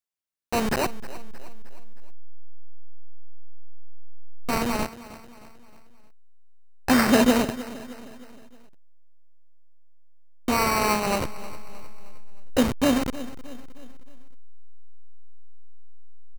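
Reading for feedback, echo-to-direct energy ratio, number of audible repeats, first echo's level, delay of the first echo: 49%, -15.5 dB, 3, -16.5 dB, 311 ms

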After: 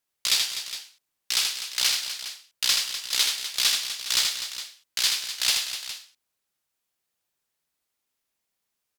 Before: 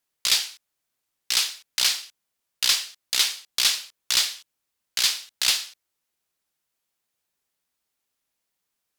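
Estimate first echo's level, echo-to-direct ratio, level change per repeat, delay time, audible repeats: -4.5 dB, -3.0 dB, no regular repeats, 80 ms, 4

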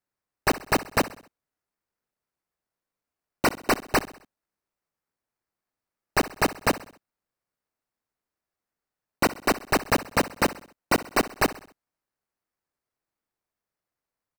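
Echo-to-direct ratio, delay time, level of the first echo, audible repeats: -16.0 dB, 65 ms, -17.0 dB, 3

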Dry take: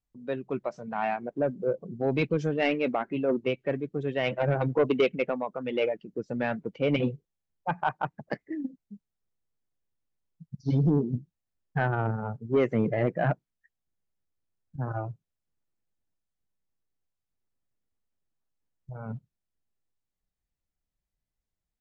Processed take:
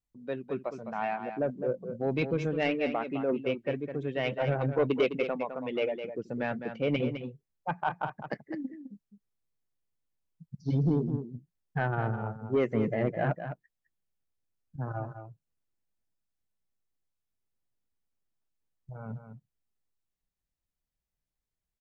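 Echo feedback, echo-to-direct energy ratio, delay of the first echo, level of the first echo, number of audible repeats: no regular repeats, -9.0 dB, 208 ms, -9.0 dB, 1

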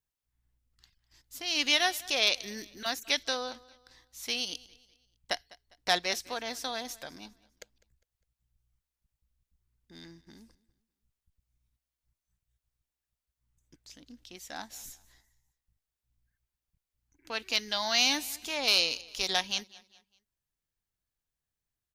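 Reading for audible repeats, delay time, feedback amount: 2, 202 ms, 39%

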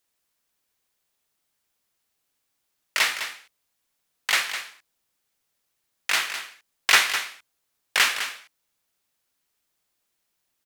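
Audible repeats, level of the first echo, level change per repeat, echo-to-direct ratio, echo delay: 1, -10.0 dB, no regular repeats, -10.0 dB, 206 ms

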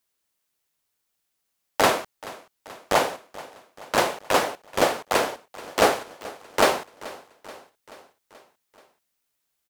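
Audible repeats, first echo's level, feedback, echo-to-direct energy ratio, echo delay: 4, -19.0 dB, 60%, -17.0 dB, 431 ms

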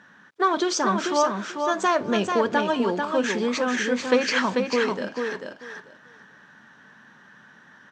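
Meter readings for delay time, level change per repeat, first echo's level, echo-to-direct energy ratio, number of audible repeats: 441 ms, -15.0 dB, -5.0 dB, -5.0 dB, 3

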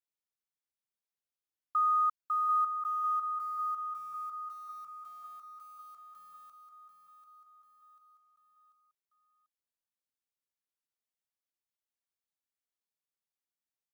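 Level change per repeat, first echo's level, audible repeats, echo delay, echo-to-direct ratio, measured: -5.5 dB, -8.0 dB, 4, 741 ms, -6.5 dB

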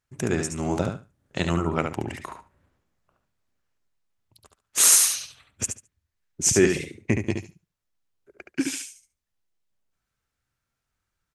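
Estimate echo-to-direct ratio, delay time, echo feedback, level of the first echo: -6.0 dB, 71 ms, 16%, -6.0 dB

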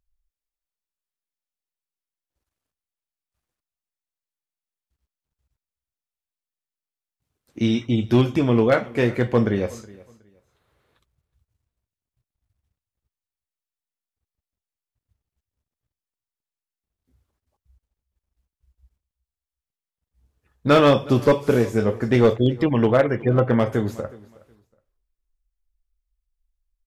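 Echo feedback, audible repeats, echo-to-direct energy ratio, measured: 23%, 2, -22.0 dB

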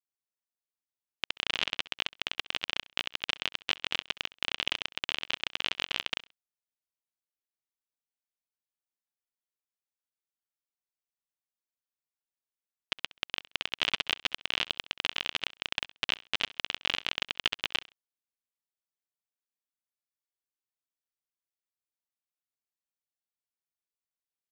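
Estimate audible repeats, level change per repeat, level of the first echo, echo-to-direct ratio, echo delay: 2, -12.5 dB, -20.0 dB, -20.0 dB, 66 ms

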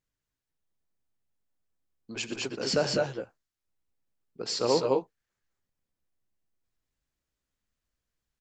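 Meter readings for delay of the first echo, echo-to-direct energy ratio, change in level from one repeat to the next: 86 ms, -1.5 dB, no regular repeats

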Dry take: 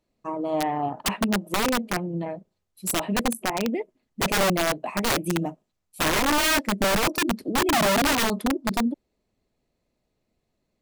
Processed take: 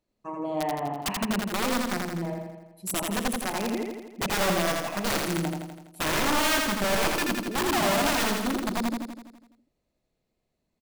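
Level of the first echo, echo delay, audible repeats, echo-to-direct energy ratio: -3.0 dB, 83 ms, 7, -1.0 dB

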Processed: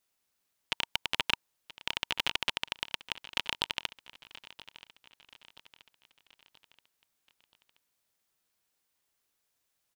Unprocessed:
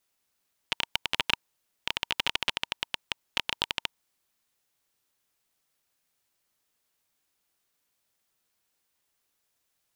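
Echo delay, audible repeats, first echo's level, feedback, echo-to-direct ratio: 978 ms, 3, -18.0 dB, 49%, -17.0 dB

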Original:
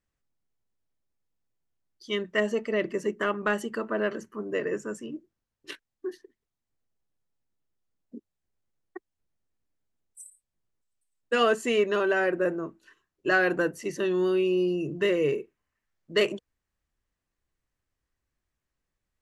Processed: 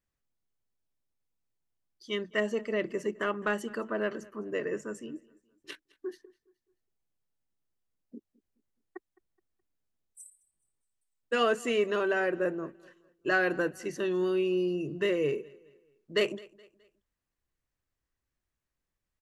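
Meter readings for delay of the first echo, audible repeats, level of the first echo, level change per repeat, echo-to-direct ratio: 211 ms, 2, -23.0 dB, -8.0 dB, -22.5 dB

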